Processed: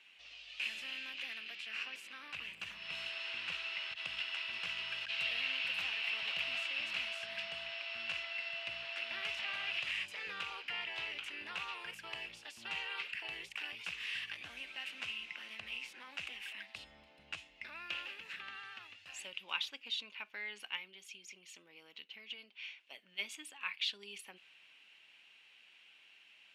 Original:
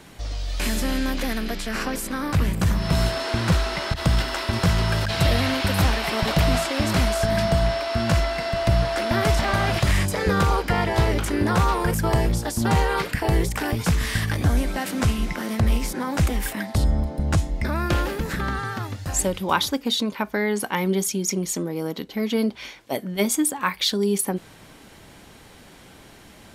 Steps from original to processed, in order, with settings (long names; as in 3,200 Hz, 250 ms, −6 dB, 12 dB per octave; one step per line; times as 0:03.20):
0:20.76–0:23.12: downward compressor, threshold −26 dBFS, peak gain reduction 8.5 dB
resonant band-pass 2,700 Hz, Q 7.4